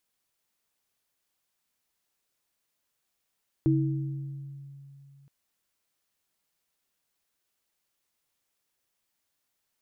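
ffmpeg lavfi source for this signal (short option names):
-f lavfi -i "aevalsrc='0.0794*pow(10,-3*t/3.02)*sin(2*PI*139*t)+0.1*pow(10,-3*t/1.18)*sin(2*PI*321*t)':d=1.62:s=44100"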